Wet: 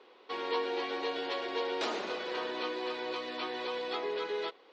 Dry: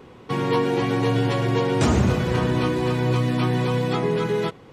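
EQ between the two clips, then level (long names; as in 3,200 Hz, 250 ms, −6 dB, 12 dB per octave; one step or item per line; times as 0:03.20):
high-pass filter 380 Hz 24 dB per octave
transistor ladder low-pass 5,000 Hz, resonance 45%
−1.0 dB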